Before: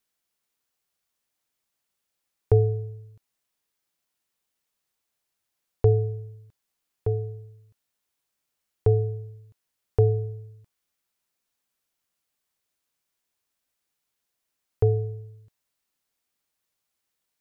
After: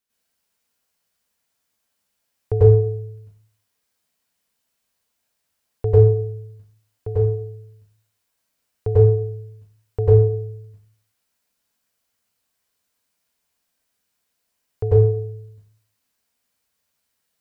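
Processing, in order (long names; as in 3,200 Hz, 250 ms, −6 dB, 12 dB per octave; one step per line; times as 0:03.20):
dense smooth reverb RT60 0.51 s, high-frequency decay 0.85×, pre-delay 85 ms, DRR −10 dB
level −4 dB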